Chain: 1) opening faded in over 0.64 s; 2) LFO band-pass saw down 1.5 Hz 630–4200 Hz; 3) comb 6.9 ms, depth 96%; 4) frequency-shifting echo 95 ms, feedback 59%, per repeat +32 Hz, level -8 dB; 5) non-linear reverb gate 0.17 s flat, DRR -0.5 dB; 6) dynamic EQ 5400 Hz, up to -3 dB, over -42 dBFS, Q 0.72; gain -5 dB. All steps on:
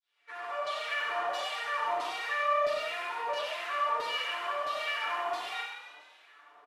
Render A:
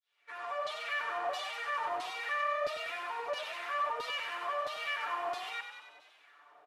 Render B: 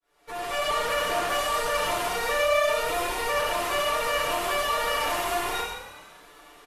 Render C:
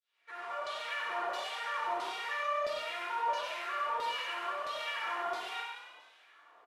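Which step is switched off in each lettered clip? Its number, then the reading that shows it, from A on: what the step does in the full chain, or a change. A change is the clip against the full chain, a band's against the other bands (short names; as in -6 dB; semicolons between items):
5, momentary loudness spread change -2 LU; 2, 8 kHz band +11.0 dB; 3, 250 Hz band +5.0 dB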